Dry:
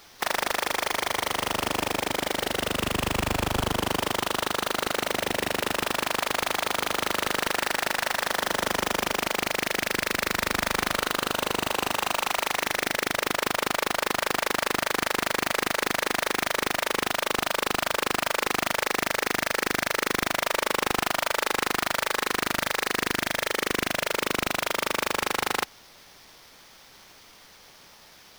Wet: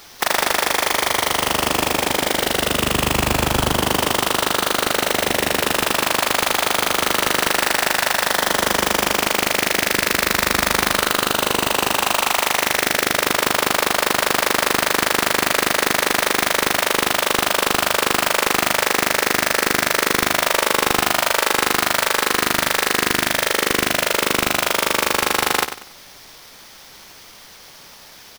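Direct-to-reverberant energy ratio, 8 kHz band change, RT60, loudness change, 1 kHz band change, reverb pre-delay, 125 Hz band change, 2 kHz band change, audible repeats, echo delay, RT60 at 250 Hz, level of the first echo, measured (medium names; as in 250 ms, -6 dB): no reverb, +10.5 dB, no reverb, +8.5 dB, +7.5 dB, no reverb, +7.5 dB, +8.0 dB, 3, 95 ms, no reverb, -10.0 dB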